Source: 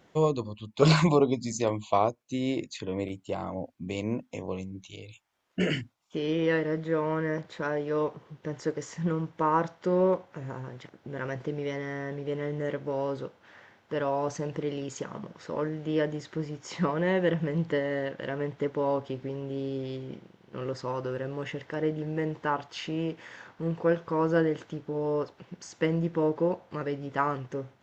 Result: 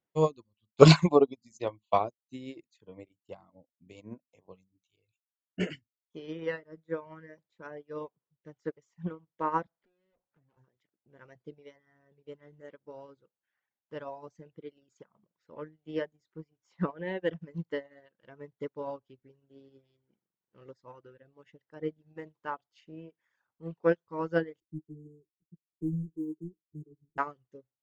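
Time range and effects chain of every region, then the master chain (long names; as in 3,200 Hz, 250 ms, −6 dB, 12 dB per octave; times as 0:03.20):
0:09.66–0:10.57: tube saturation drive 40 dB, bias 0.35 + high-frequency loss of the air 240 metres + multiband upward and downward compressor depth 100%
0:24.60–0:27.18: resonances in every octave D#, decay 0.12 s + leveller curve on the samples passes 3 + linear-phase brick-wall band-stop 480–6,400 Hz
whole clip: reverb reduction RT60 1.3 s; expander for the loud parts 2.5 to 1, over −42 dBFS; level +7.5 dB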